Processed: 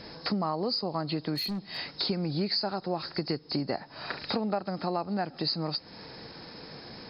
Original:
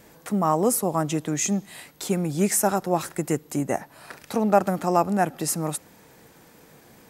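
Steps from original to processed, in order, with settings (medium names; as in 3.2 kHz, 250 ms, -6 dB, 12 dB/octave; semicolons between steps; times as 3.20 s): knee-point frequency compression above 3.7 kHz 4:1; compression 6:1, threshold -34 dBFS, peak gain reduction 20.5 dB; 1.35–1.77 s: hard clipper -35.5 dBFS, distortion -21 dB; trim +6 dB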